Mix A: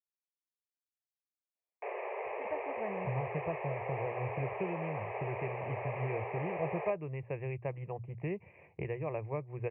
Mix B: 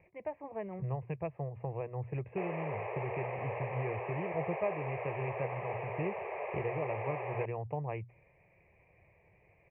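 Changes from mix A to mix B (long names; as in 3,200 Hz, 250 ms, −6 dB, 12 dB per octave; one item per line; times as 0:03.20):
speech: entry −2.25 s
background: entry +0.55 s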